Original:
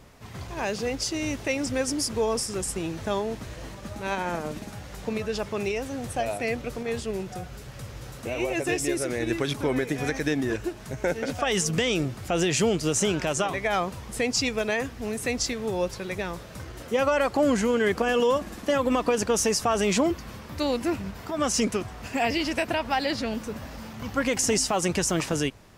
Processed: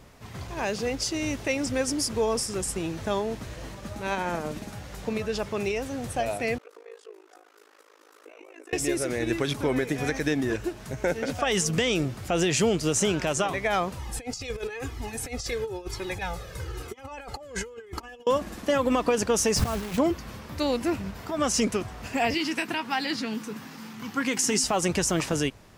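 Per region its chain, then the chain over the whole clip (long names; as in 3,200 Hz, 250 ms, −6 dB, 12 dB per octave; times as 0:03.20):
0:06.58–0:08.73: downward compressor 3 to 1, threshold −37 dBFS + Chebyshev high-pass with heavy ripple 310 Hz, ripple 9 dB + amplitude modulation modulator 53 Hz, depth 90%
0:13.99–0:18.27: comb filter 2.4 ms, depth 54% + compressor whose output falls as the input rises −29 dBFS, ratio −0.5 + flanger whose copies keep moving one way falling 1 Hz
0:19.56–0:19.98: bass and treble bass +14 dB, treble −12 dB + compressor whose output falls as the input rises −26 dBFS, ratio −0.5 + bit-depth reduction 6 bits, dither none
0:22.34–0:24.64: high-pass filter 150 Hz 24 dB per octave + parametric band 600 Hz −14.5 dB 0.47 octaves + double-tracking delay 19 ms −14 dB
whole clip: no processing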